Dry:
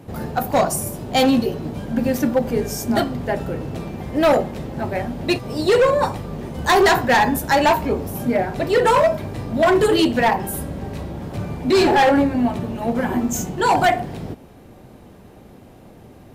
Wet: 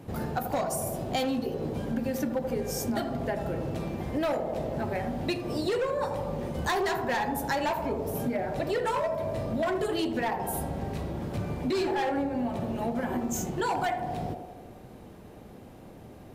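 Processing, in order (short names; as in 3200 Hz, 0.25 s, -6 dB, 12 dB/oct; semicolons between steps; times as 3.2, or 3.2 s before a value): on a send: narrowing echo 79 ms, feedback 71%, band-pass 560 Hz, level -7.5 dB; on the sum: compressor 5:1, threshold -23 dBFS, peak gain reduction 11.5 dB; gain -4 dB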